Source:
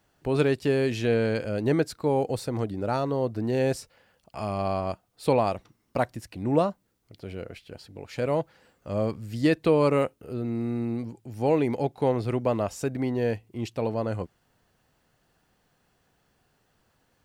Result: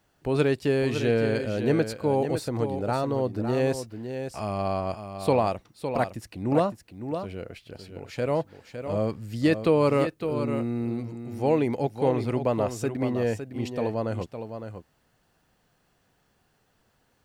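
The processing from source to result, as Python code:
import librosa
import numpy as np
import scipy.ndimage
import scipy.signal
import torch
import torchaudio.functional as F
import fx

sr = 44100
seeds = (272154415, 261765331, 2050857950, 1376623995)

y = x + 10.0 ** (-8.5 / 20.0) * np.pad(x, (int(559 * sr / 1000.0), 0))[:len(x)]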